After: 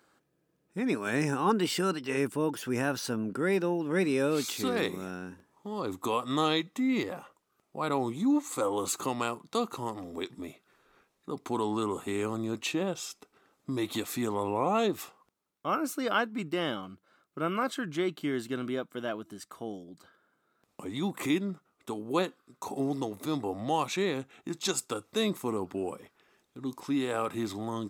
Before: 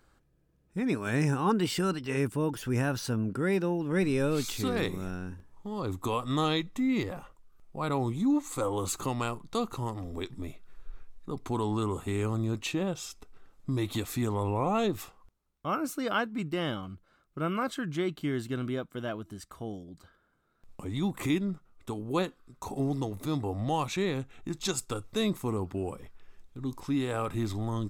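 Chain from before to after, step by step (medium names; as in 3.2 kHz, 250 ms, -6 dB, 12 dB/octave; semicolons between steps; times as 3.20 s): high-pass 220 Hz 12 dB/octave; trim +1.5 dB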